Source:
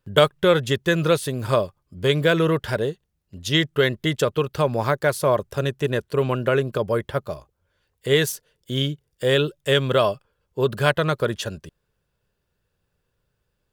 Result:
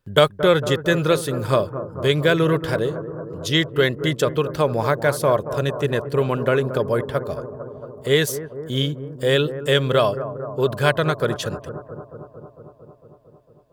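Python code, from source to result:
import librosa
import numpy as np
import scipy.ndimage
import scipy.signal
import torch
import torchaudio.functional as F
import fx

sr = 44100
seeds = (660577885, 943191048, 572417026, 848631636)

y = fx.notch(x, sr, hz=2800.0, q=20.0)
y = fx.echo_bbd(y, sr, ms=226, stages=2048, feedback_pct=75, wet_db=-12)
y = y * 10.0 ** (1.0 / 20.0)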